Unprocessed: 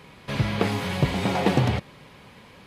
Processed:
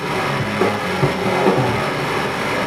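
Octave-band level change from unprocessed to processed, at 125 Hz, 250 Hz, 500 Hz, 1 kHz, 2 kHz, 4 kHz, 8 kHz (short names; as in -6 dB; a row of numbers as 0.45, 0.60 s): +2.5, +5.5, +10.5, +11.0, +11.5, +7.5, +8.5 dB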